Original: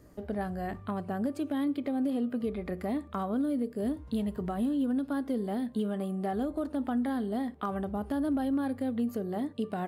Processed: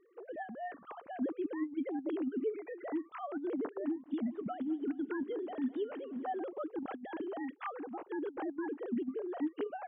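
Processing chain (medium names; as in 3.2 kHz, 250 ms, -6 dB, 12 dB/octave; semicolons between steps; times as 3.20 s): formants replaced by sine waves; dynamic bell 220 Hz, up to +5 dB, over -38 dBFS, Q 1.2; compressor with a negative ratio -27 dBFS, ratio -0.5; 3.85–6.44 s: modulated delay 207 ms, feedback 75%, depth 63 cents, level -21 dB; trim -6.5 dB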